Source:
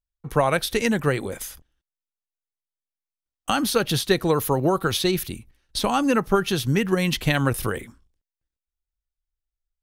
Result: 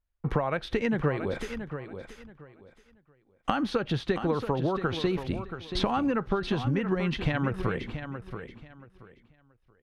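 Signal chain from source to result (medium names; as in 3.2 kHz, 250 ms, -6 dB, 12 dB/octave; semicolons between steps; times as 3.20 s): low-pass 2.2 kHz 12 dB/octave; compression 12:1, threshold -31 dBFS, peak gain reduction 17 dB; feedback delay 679 ms, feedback 23%, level -9.5 dB; trim +7 dB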